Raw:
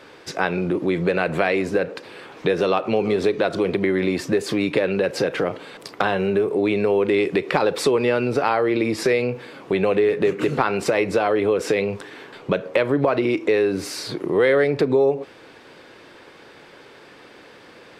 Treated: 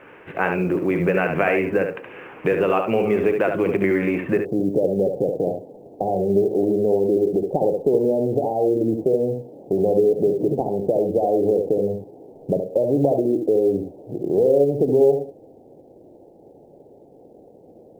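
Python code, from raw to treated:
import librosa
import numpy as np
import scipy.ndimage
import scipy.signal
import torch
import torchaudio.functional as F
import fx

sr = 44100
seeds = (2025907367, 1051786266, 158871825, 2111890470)

y = fx.steep_lowpass(x, sr, hz=fx.steps((0.0, 2900.0), (4.37, 780.0)), slope=72)
y = y + 10.0 ** (-6.0 / 20.0) * np.pad(y, (int(71 * sr / 1000.0), 0))[:len(y)]
y = fx.quant_companded(y, sr, bits=8)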